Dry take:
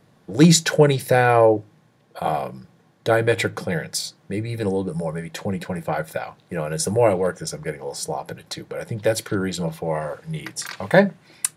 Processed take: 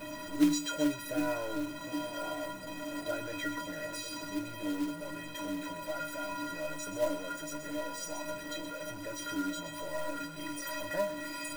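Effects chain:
converter with a step at zero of −16 dBFS
high-shelf EQ 4,000 Hz −8.5 dB
stiff-string resonator 290 Hz, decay 0.48 s, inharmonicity 0.03
echo with a time of its own for lows and highs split 840 Hz, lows 760 ms, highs 126 ms, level −9 dB
floating-point word with a short mantissa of 2 bits

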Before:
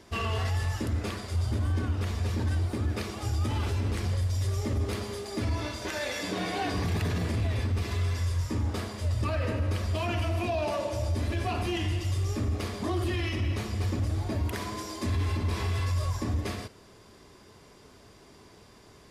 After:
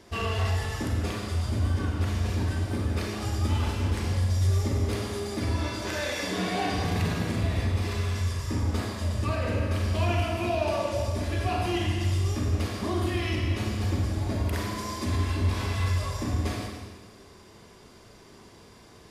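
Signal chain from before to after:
four-comb reverb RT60 1.4 s, combs from 33 ms, DRR 1 dB

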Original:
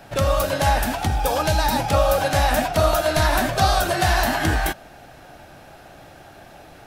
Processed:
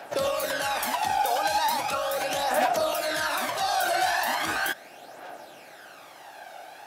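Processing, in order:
high-pass filter 460 Hz 12 dB per octave
brickwall limiter −18.5 dBFS, peak gain reduction 10 dB
phase shifter 0.38 Hz, delay 1.4 ms, feedback 50%

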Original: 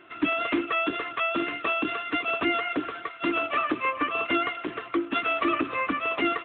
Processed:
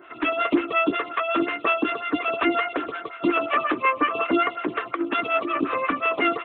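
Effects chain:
0:04.77–0:05.78: compressor whose output falls as the input rises −27 dBFS, ratio −0.5
phaser with staggered stages 5.5 Hz
level +7 dB

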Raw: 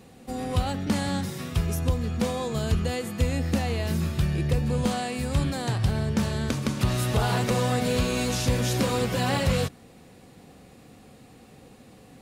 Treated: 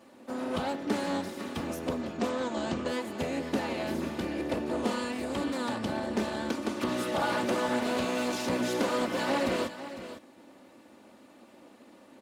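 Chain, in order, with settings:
lower of the sound and its delayed copy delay 3.4 ms
high-pass filter 220 Hz 12 dB per octave
high-shelf EQ 3,000 Hz −8.5 dB
0:02.01–0:02.88: linear-phase brick-wall low-pass 8,800 Hz
single-tap delay 504 ms −12.5 dB
highs frequency-modulated by the lows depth 0.12 ms

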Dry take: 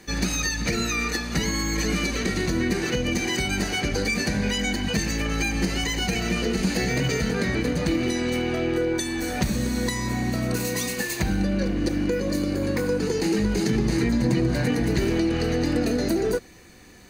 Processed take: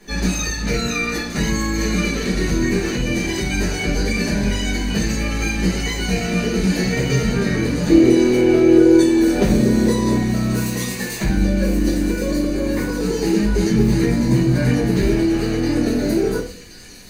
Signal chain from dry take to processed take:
0:07.89–0:10.17: parametric band 410 Hz +12.5 dB 1.2 octaves
delay with a high-pass on its return 1,075 ms, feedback 72%, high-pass 3,600 Hz, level −8 dB
rectangular room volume 38 cubic metres, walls mixed, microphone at 1.5 metres
level −6 dB

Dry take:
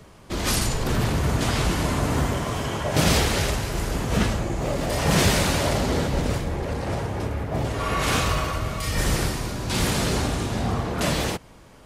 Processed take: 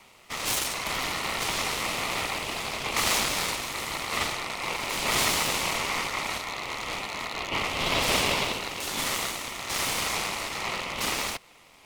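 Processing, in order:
loose part that buzzes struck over −27 dBFS, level −21 dBFS
0:07.33–0:08.53: dynamic equaliser 720 Hz, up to +7 dB, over −39 dBFS, Q 0.72
full-wave rectification
high-pass filter 360 Hz 12 dB per octave
ring modulation 1,600 Hz
level +3 dB

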